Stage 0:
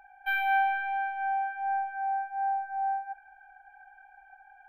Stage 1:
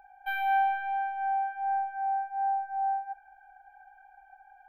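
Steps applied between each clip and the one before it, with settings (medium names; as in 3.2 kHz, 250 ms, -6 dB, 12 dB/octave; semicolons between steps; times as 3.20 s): graphic EQ 125/500/2000/8000 Hz +3/+4/-7/-5 dB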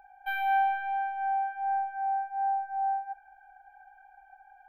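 no audible change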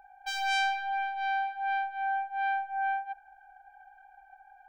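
self-modulated delay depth 0.3 ms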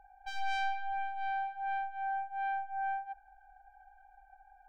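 tilt EQ -3 dB/octave; trim -5.5 dB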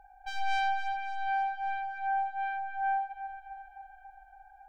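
echo whose repeats swap between lows and highs 139 ms, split 1.3 kHz, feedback 77%, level -8.5 dB; trim +3 dB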